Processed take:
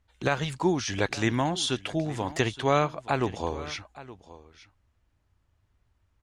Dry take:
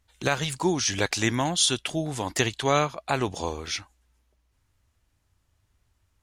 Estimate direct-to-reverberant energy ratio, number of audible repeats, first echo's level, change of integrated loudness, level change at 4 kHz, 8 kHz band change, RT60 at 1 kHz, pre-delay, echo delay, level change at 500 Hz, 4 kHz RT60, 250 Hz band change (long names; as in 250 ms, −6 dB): no reverb audible, 1, −17.5 dB, −2.0 dB, −5.5 dB, −9.5 dB, no reverb audible, no reverb audible, 870 ms, 0.0 dB, no reverb audible, 0.0 dB